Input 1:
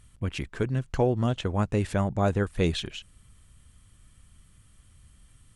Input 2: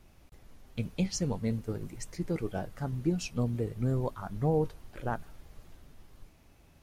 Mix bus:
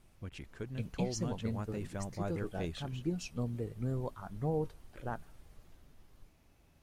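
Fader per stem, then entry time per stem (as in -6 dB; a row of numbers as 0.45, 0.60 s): -14.5, -6.0 dB; 0.00, 0.00 s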